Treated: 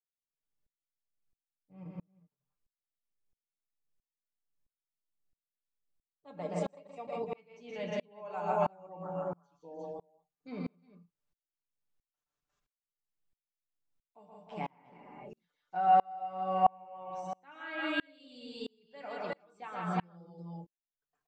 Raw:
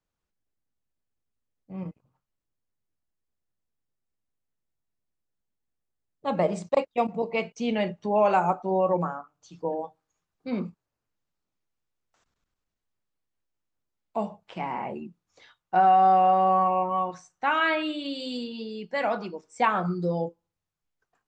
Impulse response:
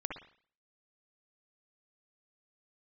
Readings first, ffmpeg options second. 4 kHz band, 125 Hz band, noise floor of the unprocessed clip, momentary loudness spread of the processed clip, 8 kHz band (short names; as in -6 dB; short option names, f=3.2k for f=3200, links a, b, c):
-11.0 dB, -9.0 dB, -85 dBFS, 21 LU, n/a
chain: -af "aecho=1:1:6.8:0.55,aecho=1:1:123|163|306|353|358:0.473|0.501|0.15|0.335|0.422,aeval=exprs='val(0)*pow(10,-34*if(lt(mod(-1.5*n/s,1),2*abs(-1.5)/1000),1-mod(-1.5*n/s,1)/(2*abs(-1.5)/1000),(mod(-1.5*n/s,1)-2*abs(-1.5)/1000)/(1-2*abs(-1.5)/1000))/20)':c=same,volume=-5.5dB"